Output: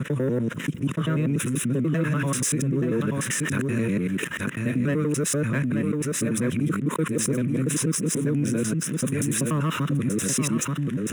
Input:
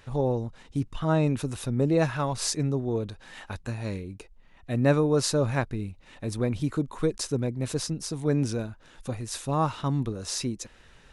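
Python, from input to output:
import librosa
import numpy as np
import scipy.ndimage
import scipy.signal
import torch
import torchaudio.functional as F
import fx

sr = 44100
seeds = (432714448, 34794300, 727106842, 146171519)

y = fx.local_reverse(x, sr, ms=97.0)
y = fx.leveller(y, sr, passes=2)
y = fx.low_shelf(y, sr, hz=350.0, db=4.5)
y = fx.fixed_phaser(y, sr, hz=1900.0, stages=4)
y = fx.rider(y, sr, range_db=4, speed_s=0.5)
y = scipy.signal.sosfilt(scipy.signal.cheby1(3, 1.0, 160.0, 'highpass', fs=sr, output='sos'), y)
y = fx.high_shelf(y, sr, hz=7500.0, db=4.0)
y = y + 10.0 ** (-7.5 / 20.0) * np.pad(y, (int(881 * sr / 1000.0), 0))[:len(y)]
y = fx.env_flatten(y, sr, amount_pct=70)
y = y * librosa.db_to_amplitude(-5.5)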